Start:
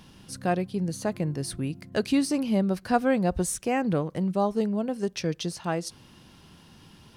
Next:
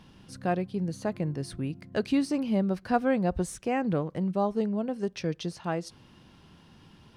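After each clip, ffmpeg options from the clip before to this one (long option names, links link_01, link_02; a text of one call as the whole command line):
ffmpeg -i in.wav -af "highshelf=frequency=6000:gain=-12,volume=-2dB" out.wav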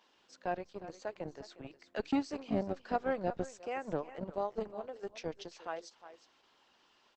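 ffmpeg -i in.wav -filter_complex "[0:a]aecho=1:1:359:0.224,acrossover=split=380[link_01][link_02];[link_01]acrusher=bits=3:mix=0:aa=0.5[link_03];[link_03][link_02]amix=inputs=2:normalize=0,volume=-6.5dB" -ar 48000 -c:a libopus -b:a 12k out.opus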